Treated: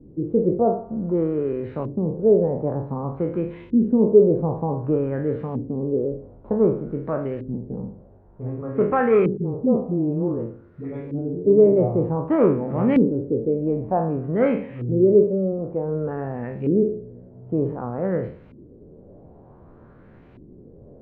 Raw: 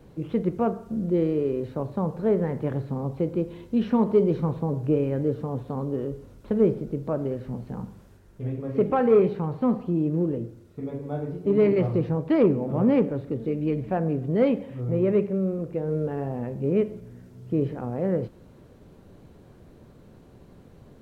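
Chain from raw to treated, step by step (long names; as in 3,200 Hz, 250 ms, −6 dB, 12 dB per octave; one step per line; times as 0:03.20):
peak hold with a decay on every bin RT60 0.45 s
0:09.37–0:11.45: all-pass dispersion highs, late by 65 ms, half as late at 420 Hz
auto-filter low-pass saw up 0.54 Hz 290–2,500 Hz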